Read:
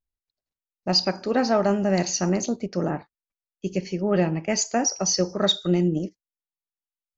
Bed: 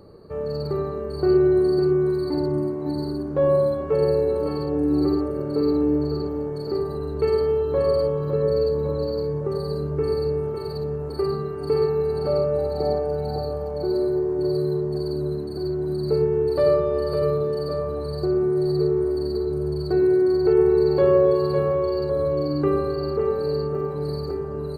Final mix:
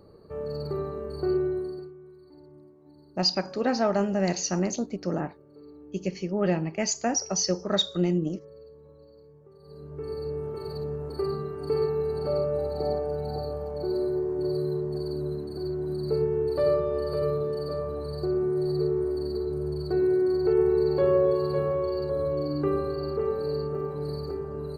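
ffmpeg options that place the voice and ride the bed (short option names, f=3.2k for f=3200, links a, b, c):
-filter_complex "[0:a]adelay=2300,volume=-3.5dB[a];[1:a]volume=17dB,afade=t=out:st=1.12:d=0.8:silence=0.0794328,afade=t=in:st=9.59:d=1.13:silence=0.0749894[b];[a][b]amix=inputs=2:normalize=0"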